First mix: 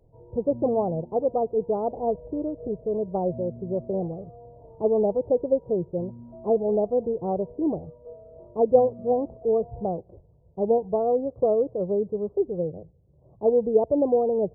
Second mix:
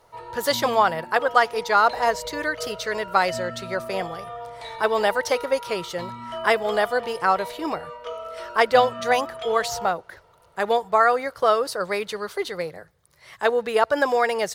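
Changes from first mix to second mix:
speech −8.5 dB
master: remove Gaussian smoothing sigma 18 samples

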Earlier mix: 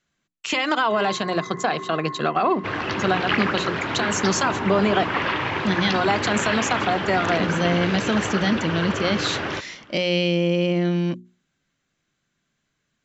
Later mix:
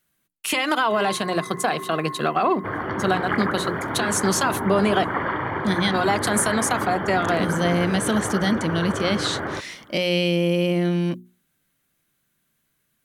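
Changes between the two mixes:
second sound: add Savitzky-Golay smoothing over 41 samples
master: remove linear-phase brick-wall low-pass 7,700 Hz

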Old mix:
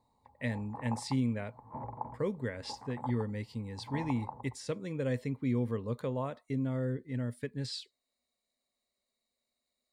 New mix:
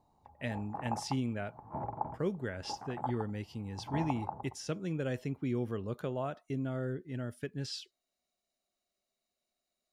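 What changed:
background +4.0 dB
master: remove EQ curve with evenly spaced ripples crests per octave 0.98, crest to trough 9 dB

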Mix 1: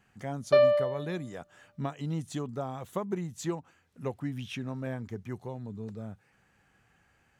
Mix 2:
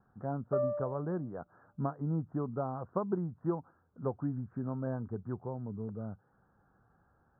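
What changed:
background −11.0 dB
master: add Butterworth low-pass 1,500 Hz 72 dB per octave

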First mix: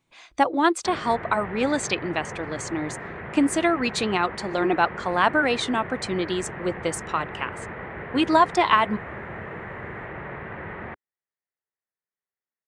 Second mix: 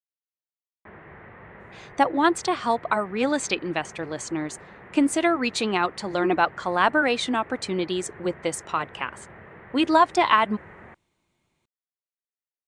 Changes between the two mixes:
speech: entry +1.60 s
background −10.0 dB

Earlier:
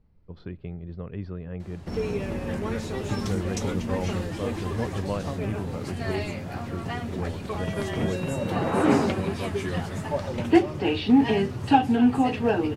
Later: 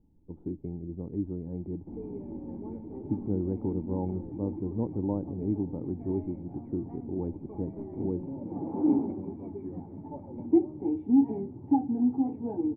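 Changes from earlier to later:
speech +10.5 dB
master: add formant resonators in series u

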